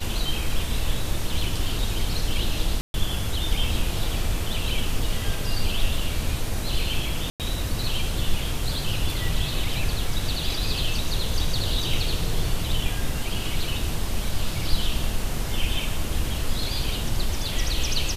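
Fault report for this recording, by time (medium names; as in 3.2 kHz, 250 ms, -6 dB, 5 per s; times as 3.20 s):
2.81–2.94 s: dropout 131 ms
7.30–7.40 s: dropout 98 ms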